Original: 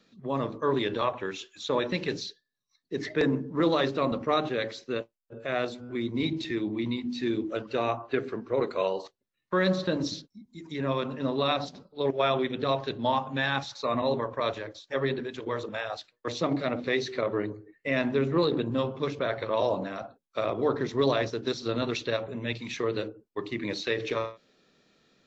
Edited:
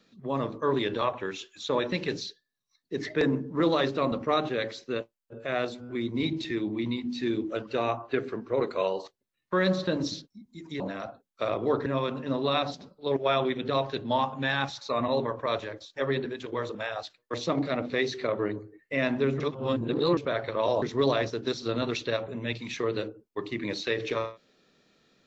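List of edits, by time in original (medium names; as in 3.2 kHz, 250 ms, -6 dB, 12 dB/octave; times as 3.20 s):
18.34–19.11 s: reverse
19.76–20.82 s: move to 10.80 s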